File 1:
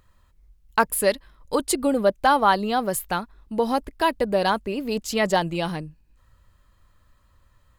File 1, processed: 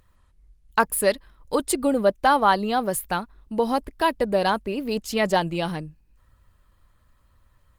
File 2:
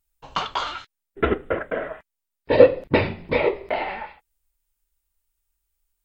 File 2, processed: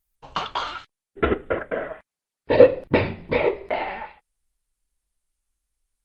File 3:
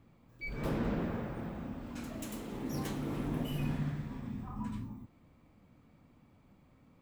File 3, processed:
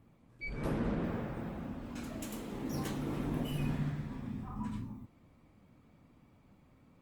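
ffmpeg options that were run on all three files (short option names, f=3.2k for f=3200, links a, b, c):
-ar 48000 -c:a libopus -b:a 32k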